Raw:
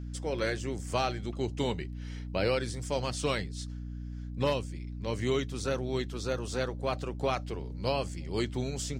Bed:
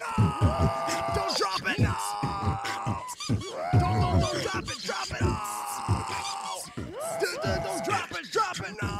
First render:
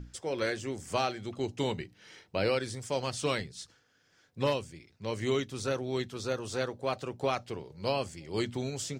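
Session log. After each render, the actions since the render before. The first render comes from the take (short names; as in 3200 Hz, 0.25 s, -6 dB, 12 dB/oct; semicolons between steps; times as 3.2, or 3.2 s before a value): notches 60/120/180/240/300 Hz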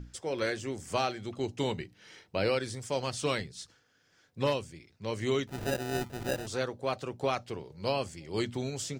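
5.47–6.47 sample-rate reducer 1100 Hz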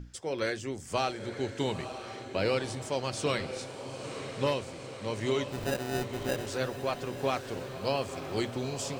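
diffused feedback echo 0.952 s, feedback 64%, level -9 dB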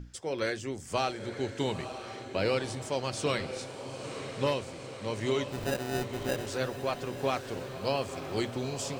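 nothing audible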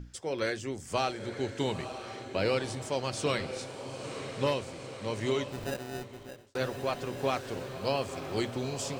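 5.26–6.55 fade out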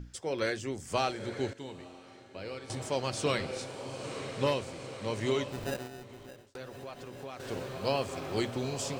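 1.53–2.7 resonator 89 Hz, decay 2 s, mix 80%; 5.87–7.4 compressor 2.5:1, threshold -45 dBFS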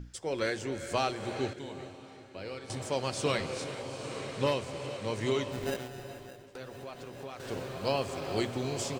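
outdoor echo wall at 130 m, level -23 dB; non-linear reverb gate 0.46 s rising, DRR 10.5 dB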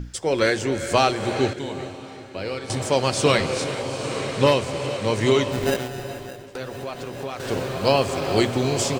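gain +11.5 dB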